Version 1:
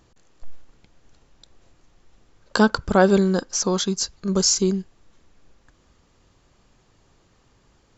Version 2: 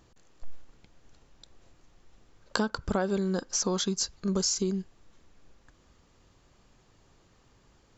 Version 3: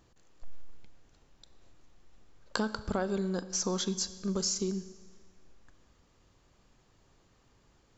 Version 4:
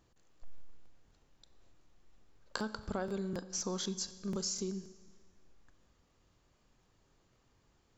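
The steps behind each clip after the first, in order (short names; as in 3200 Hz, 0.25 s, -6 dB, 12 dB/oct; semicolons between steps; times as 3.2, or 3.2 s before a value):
compressor 8:1, threshold -22 dBFS, peak gain reduction 12 dB; gain -2.5 dB
Schroeder reverb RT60 1.5 s, combs from 29 ms, DRR 14 dB; gain -3.5 dB
crackling interface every 0.25 s, samples 1024, repeat, from 0.31; gain -5.5 dB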